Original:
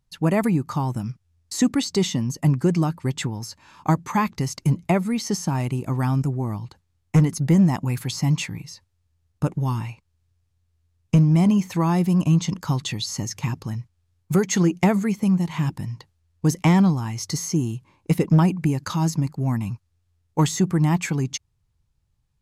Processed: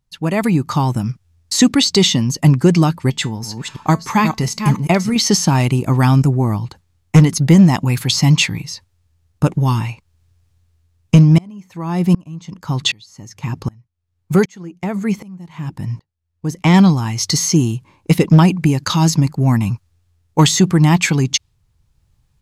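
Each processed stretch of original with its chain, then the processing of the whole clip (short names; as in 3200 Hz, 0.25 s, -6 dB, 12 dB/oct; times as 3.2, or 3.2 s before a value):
3.1–5.16 reverse delay 0.333 s, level -7 dB + resonator 220 Hz, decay 0.21 s, mix 50%
11.38–16.74 high shelf 4500 Hz -5 dB + dB-ramp tremolo swelling 1.3 Hz, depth 30 dB
whole clip: dynamic EQ 3700 Hz, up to +8 dB, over -45 dBFS, Q 0.89; AGC gain up to 11.5 dB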